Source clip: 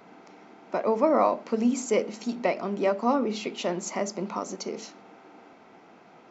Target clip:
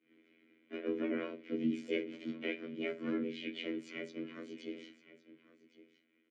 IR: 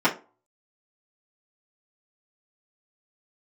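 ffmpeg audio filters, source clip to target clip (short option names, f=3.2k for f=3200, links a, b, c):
-filter_complex "[0:a]agate=range=-33dB:threshold=-44dB:ratio=3:detection=peak,asplit=2[a][b];[b]highshelf=f=2.1k:g=8.5[c];[1:a]atrim=start_sample=2205,asetrate=48510,aresample=44100,highshelf=f=2.4k:g=10[d];[c][d]afir=irnorm=-1:irlink=0,volume=-29dB[e];[a][e]amix=inputs=2:normalize=0,asplit=4[f][g][h][i];[g]asetrate=33038,aresample=44100,atempo=1.33484,volume=-5dB[j];[h]asetrate=52444,aresample=44100,atempo=0.840896,volume=-2dB[k];[i]asetrate=66075,aresample=44100,atempo=0.66742,volume=-8dB[l];[f][j][k][l]amix=inputs=4:normalize=0,bass=f=250:g=-6,treble=f=4k:g=-12,aecho=1:1:2:0.41,aecho=1:1:1112:0.133,afftfilt=real='hypot(re,im)*cos(PI*b)':imag='0':win_size=2048:overlap=0.75,afreqshift=-23,asplit=3[m][n][o];[m]bandpass=f=270:t=q:w=8,volume=0dB[p];[n]bandpass=f=2.29k:t=q:w=8,volume=-6dB[q];[o]bandpass=f=3.01k:t=q:w=8,volume=-9dB[r];[p][q][r]amix=inputs=3:normalize=0,volume=4.5dB"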